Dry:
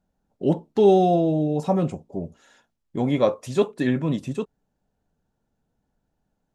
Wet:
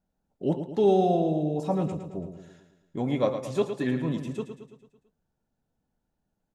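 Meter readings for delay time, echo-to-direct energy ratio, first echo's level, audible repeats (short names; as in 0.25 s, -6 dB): 0.111 s, -7.5 dB, -9.0 dB, 5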